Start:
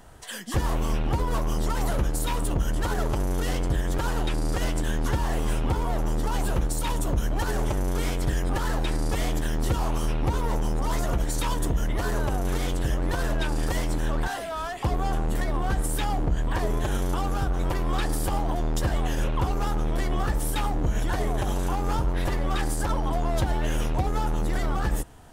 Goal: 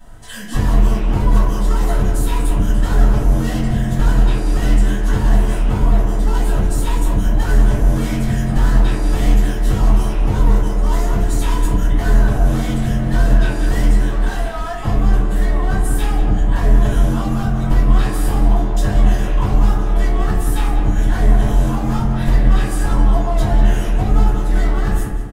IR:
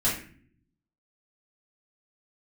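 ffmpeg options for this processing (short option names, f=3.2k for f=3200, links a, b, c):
-filter_complex "[0:a]asettb=1/sr,asplit=3[a][b][c];[a]atrim=end=5.984[d];[b]atrim=start=5.98:end=7.85,asetpts=PTS-STARTPTS,afade=t=in:d=0.004:c=qsin,afade=t=out:st=1.866:d=0.004:c=qsin,asoftclip=type=hard:threshold=-17dB[e];[c]atrim=start=7.846[f];[d][e]acrossfade=d=0.004:c1=hsin:c2=qsin[g];[g][f]acrossfade=d=0.004:c1=qsin:c2=hsin,asplit=2[h][i];[i]adelay=190,lowpass=f=2.7k:p=1,volume=-6dB,asplit=2[j][k];[k]adelay=190,lowpass=f=2.7k:p=1,volume=0.39,asplit=2[l][m];[m]adelay=190,lowpass=f=2.7k:p=1,volume=0.39,asplit=2[n][o];[o]adelay=190,lowpass=f=2.7k:p=1,volume=0.39,asplit=2[p][q];[q]adelay=190,lowpass=f=2.7k:p=1,volume=0.39[r];[h][j][l][n][p][r]amix=inputs=6:normalize=0[s];[1:a]atrim=start_sample=2205[t];[s][t]afir=irnorm=-1:irlink=0,volume=-6.5dB"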